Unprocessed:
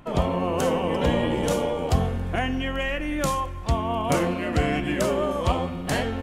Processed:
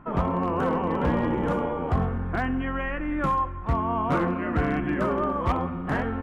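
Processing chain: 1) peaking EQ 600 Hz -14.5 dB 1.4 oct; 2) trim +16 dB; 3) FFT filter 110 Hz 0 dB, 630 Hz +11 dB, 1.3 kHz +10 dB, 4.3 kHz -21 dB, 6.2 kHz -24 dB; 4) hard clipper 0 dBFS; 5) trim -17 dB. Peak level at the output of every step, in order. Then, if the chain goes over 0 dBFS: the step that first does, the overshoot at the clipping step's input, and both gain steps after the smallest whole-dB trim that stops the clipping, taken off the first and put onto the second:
-9.5 dBFS, +6.5 dBFS, +8.5 dBFS, 0.0 dBFS, -17.0 dBFS; step 2, 8.5 dB; step 2 +7 dB, step 5 -8 dB

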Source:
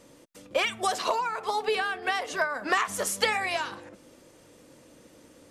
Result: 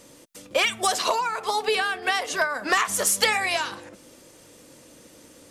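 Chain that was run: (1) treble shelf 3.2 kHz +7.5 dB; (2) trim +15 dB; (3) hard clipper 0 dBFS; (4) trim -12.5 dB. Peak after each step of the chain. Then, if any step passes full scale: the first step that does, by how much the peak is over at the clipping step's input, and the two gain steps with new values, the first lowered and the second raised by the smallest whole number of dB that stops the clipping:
-9.0 dBFS, +6.0 dBFS, 0.0 dBFS, -12.5 dBFS; step 2, 6.0 dB; step 2 +9 dB, step 4 -6.5 dB

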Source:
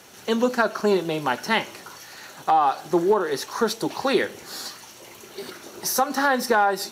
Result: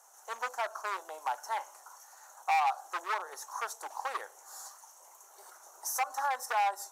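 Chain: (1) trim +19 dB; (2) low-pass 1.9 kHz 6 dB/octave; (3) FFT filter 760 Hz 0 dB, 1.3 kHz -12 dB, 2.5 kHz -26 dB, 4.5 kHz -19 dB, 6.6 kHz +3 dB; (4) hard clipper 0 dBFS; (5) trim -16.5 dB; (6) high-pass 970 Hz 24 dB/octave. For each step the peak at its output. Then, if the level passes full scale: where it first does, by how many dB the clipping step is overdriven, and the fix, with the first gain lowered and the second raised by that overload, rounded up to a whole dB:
+13.0 dBFS, +11.0 dBFS, +8.5 dBFS, 0.0 dBFS, -16.5 dBFS, -17.5 dBFS; step 1, 8.5 dB; step 1 +10 dB, step 5 -7.5 dB

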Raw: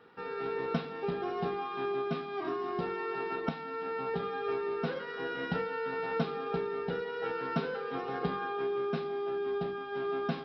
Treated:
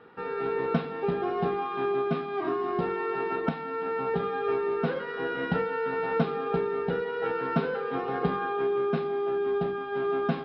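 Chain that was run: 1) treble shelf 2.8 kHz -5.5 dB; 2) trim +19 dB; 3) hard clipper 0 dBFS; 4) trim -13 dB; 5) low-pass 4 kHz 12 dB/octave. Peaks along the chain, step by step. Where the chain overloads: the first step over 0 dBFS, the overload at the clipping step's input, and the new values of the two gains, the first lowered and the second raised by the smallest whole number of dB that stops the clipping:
-15.5 dBFS, +3.5 dBFS, 0.0 dBFS, -13.0 dBFS, -13.0 dBFS; step 2, 3.5 dB; step 2 +15 dB, step 4 -9 dB

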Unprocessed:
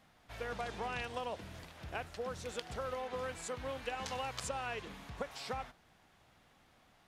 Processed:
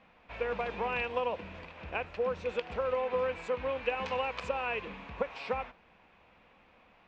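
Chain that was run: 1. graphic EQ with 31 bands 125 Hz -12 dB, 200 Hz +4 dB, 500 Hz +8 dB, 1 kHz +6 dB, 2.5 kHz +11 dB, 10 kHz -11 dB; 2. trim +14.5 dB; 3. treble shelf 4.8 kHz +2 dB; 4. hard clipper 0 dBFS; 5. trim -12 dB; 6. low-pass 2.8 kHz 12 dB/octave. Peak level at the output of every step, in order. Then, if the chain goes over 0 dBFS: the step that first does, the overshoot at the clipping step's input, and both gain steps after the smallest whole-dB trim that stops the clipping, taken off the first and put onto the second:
-18.5 dBFS, -4.0 dBFS, -3.5 dBFS, -3.5 dBFS, -15.5 dBFS, -17.0 dBFS; nothing clips

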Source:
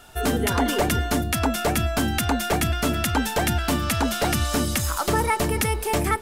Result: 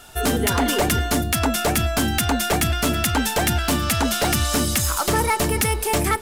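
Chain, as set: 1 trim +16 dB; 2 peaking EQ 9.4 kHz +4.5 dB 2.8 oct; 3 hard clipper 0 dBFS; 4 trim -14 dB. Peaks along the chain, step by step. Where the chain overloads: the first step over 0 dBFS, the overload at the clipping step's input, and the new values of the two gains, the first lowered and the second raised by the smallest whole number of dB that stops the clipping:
+4.0 dBFS, +8.0 dBFS, 0.0 dBFS, -14.0 dBFS; step 1, 8.0 dB; step 1 +8 dB, step 4 -6 dB

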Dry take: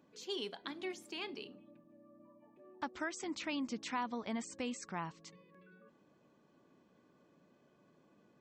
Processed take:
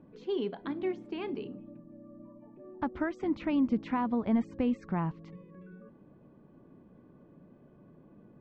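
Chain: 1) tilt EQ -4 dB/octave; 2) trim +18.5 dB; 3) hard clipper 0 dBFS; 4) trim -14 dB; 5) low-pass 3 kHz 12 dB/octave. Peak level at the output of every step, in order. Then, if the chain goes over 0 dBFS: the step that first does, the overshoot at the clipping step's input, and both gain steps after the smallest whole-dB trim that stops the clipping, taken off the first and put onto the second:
-23.0 dBFS, -4.5 dBFS, -4.5 dBFS, -18.5 dBFS, -18.5 dBFS; nothing clips

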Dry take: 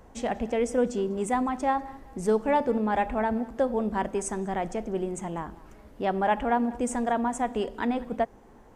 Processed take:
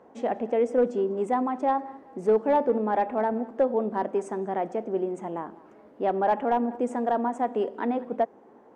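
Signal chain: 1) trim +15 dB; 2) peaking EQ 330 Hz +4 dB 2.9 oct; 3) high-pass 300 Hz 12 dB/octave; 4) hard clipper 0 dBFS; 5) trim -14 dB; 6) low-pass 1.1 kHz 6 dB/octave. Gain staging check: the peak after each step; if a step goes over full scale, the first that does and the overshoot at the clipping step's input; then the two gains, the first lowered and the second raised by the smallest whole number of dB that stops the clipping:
+2.0 dBFS, +4.5 dBFS, +5.5 dBFS, 0.0 dBFS, -14.0 dBFS, -14.0 dBFS; step 1, 5.5 dB; step 1 +9 dB, step 5 -8 dB

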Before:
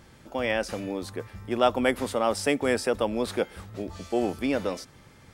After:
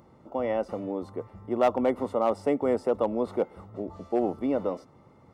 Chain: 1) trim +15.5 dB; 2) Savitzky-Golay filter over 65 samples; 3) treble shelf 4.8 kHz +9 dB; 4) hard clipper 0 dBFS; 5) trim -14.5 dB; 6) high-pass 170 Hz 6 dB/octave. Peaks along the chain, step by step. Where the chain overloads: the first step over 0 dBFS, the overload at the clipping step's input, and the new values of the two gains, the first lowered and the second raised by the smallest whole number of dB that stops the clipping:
+7.5 dBFS, +4.5 dBFS, +4.5 dBFS, 0.0 dBFS, -14.5 dBFS, -12.5 dBFS; step 1, 4.5 dB; step 1 +10.5 dB, step 5 -9.5 dB

